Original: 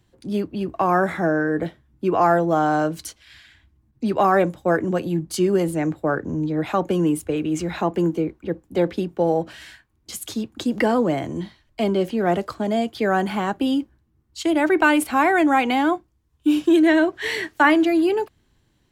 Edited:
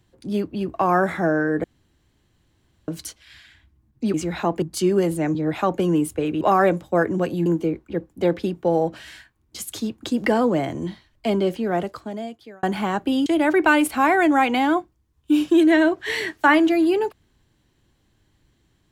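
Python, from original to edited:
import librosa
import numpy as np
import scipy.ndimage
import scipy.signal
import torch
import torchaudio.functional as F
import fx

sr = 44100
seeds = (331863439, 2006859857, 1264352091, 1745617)

y = fx.edit(x, sr, fx.room_tone_fill(start_s=1.64, length_s=1.24),
    fx.swap(start_s=4.14, length_s=1.05, other_s=7.52, other_length_s=0.48),
    fx.cut(start_s=5.92, length_s=0.54),
    fx.fade_out_span(start_s=11.94, length_s=1.23),
    fx.cut(start_s=13.8, length_s=0.62), tone=tone)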